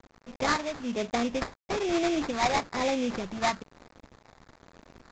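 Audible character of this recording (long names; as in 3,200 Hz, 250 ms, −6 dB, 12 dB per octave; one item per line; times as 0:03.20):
a quantiser's noise floor 8 bits, dither none
phaser sweep stages 12, 1.1 Hz, lowest notch 410–2,700 Hz
aliases and images of a low sample rate 3,000 Hz, jitter 20%
mu-law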